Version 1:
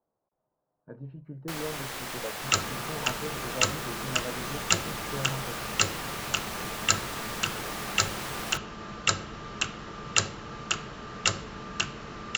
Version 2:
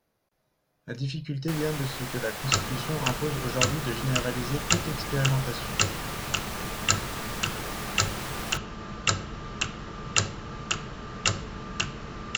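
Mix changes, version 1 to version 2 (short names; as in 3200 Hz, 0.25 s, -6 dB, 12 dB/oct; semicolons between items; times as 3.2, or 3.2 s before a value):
speech: remove ladder low-pass 1200 Hz, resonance 30%; master: add low shelf 150 Hz +8 dB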